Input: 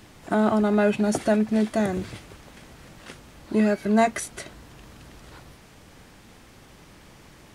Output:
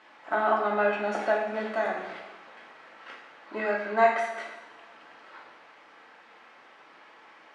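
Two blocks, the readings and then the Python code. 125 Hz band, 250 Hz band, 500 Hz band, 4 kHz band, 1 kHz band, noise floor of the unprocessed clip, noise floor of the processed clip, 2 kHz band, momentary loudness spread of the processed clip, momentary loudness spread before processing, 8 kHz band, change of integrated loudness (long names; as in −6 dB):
below −15 dB, −16.5 dB, −2.5 dB, −5.5 dB, +2.0 dB, −51 dBFS, −54 dBFS, +2.5 dB, 23 LU, 16 LU, below −15 dB, −4.5 dB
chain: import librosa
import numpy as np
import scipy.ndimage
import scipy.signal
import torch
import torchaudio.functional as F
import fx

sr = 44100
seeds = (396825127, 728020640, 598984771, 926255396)

y = fx.bandpass_edges(x, sr, low_hz=790.0, high_hz=2000.0)
y = y + 10.0 ** (-22.0 / 20.0) * np.pad(y, (int(342 * sr / 1000.0), 0))[:len(y)]
y = fx.rev_double_slope(y, sr, seeds[0], early_s=0.8, late_s=2.0, knee_db=-18, drr_db=-1.5)
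y = F.gain(torch.from_numpy(y), 1.0).numpy()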